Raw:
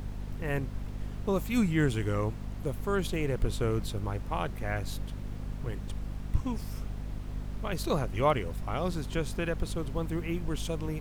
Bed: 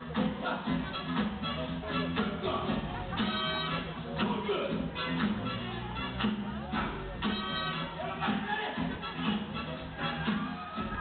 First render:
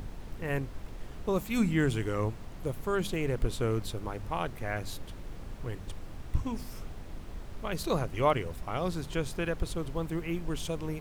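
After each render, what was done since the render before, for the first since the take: de-hum 50 Hz, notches 5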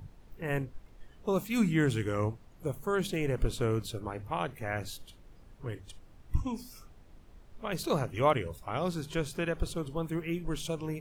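noise print and reduce 13 dB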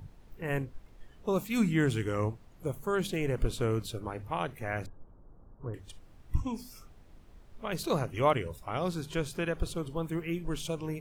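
4.86–5.74 steep low-pass 1300 Hz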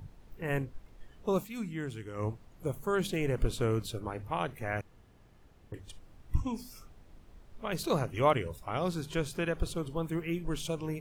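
1.36–2.31 dip -10.5 dB, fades 0.17 s; 4.81–5.72 room tone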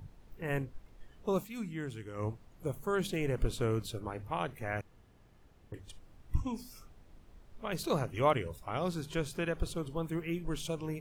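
gain -2 dB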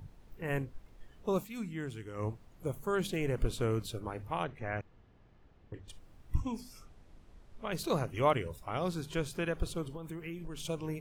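4.44–5.88 air absorption 140 m; 6.6–7.74 LPF 11000 Hz; 9.86–10.65 compressor 10:1, threshold -37 dBFS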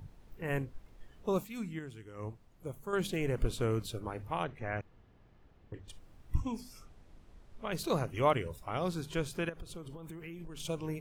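1.79–2.93 gain -5.5 dB; 9.49–10.6 compressor 5:1, threshold -41 dBFS

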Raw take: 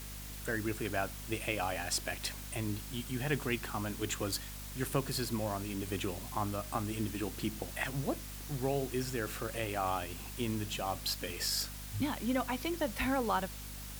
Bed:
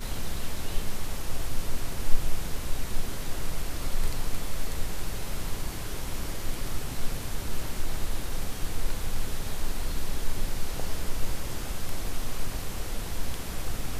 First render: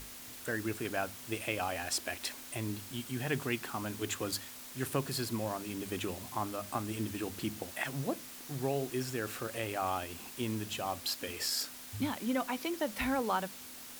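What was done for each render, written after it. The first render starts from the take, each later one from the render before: notches 50/100/150/200 Hz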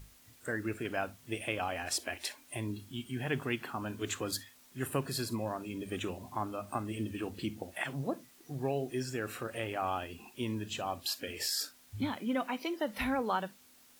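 noise print and reduce 13 dB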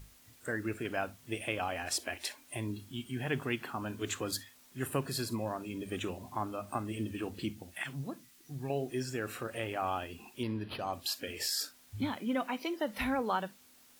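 7.52–8.7 bell 570 Hz -11.5 dB 1.7 oct; 10.43–10.93 decimation joined by straight lines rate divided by 6×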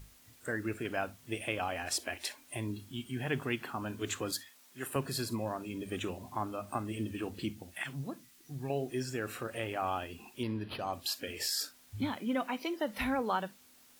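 4.32–4.96 HPF 440 Hz 6 dB/oct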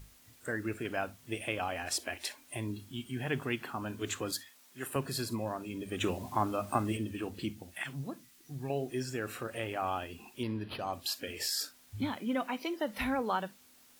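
6–6.97 gain +5.5 dB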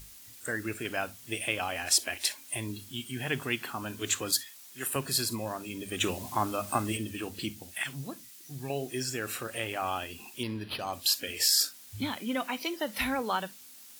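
high shelf 2400 Hz +11.5 dB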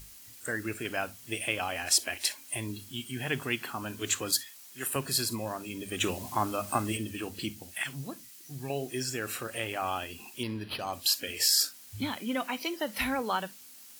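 notch 3600 Hz, Q 24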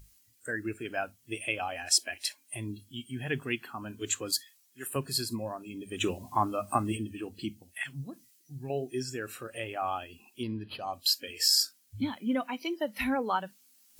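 reverse; upward compressor, threshold -41 dBFS; reverse; spectral expander 1.5:1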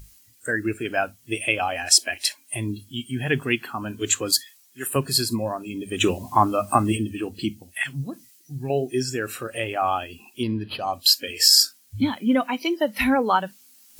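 gain +9.5 dB; limiter -3 dBFS, peak gain reduction 1.5 dB

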